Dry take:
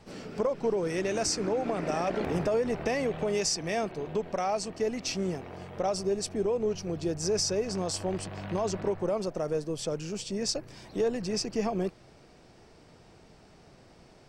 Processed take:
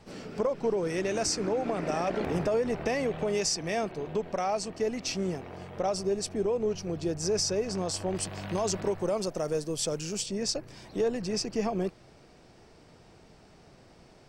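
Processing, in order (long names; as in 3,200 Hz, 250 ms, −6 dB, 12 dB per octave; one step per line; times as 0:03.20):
0:08.15–0:10.26: high-shelf EQ 4,400 Hz +11 dB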